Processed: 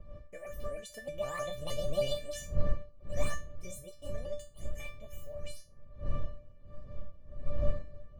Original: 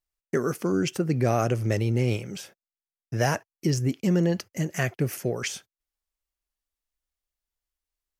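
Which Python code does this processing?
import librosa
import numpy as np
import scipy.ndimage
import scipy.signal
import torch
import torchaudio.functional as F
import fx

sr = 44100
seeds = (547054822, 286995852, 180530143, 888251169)

y = fx.pitch_ramps(x, sr, semitones=9.0, every_ms=158)
y = fx.doppler_pass(y, sr, speed_mps=8, closest_m=4.0, pass_at_s=2.21)
y = fx.dmg_wind(y, sr, seeds[0], corner_hz=150.0, level_db=-31.0)
y = fx.comb_fb(y, sr, f0_hz=590.0, decay_s=0.28, harmonics='all', damping=0.0, mix_pct=100)
y = y * librosa.db_to_amplitude(14.5)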